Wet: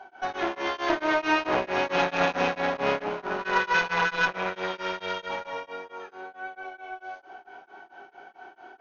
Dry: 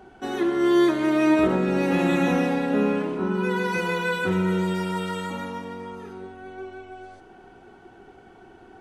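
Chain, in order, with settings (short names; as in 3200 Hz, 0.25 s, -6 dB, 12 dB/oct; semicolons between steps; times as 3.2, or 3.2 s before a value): high shelf 4600 Hz -9 dB; reverb RT60 0.35 s, pre-delay 3 ms, DRR 0.5 dB; one-sided clip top -25 dBFS; HPF 670 Hz 12 dB/oct; added harmonics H 6 -22 dB, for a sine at -12 dBFS; brick-wall FIR low-pass 6800 Hz; beating tremolo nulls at 4.5 Hz; gain +3 dB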